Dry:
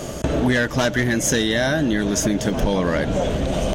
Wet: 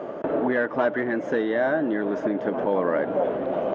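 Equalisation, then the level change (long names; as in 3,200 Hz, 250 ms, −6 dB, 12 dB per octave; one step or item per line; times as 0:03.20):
flat-topped band-pass 670 Hz, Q 0.59
high-frequency loss of the air 91 metres
0.0 dB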